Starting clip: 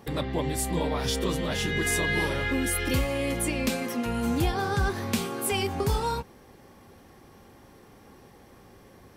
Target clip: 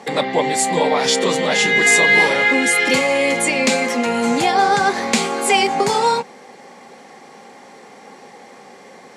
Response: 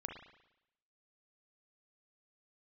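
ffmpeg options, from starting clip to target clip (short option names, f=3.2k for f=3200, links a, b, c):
-af "highpass=f=200:w=0.5412,highpass=f=200:w=1.3066,equalizer=f=320:t=q:w=4:g=-8,equalizer=f=490:t=q:w=4:g=4,equalizer=f=790:t=q:w=4:g=7,equalizer=f=2.1k:t=q:w=4:g=8,equalizer=f=4.3k:t=q:w=4:g=4,equalizer=f=7.1k:t=q:w=4:g=7,lowpass=f=9.5k:w=0.5412,lowpass=f=9.5k:w=1.3066,acontrast=34,volume=5dB"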